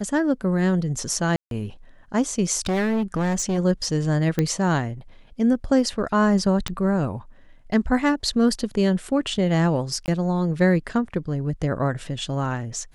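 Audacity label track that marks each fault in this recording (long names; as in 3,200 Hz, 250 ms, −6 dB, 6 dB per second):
1.360000	1.510000	drop-out 152 ms
2.660000	3.590000	clipping −19.5 dBFS
4.390000	4.390000	click −9 dBFS
6.680000	6.680000	click −12 dBFS
10.060000	10.080000	drop-out 19 ms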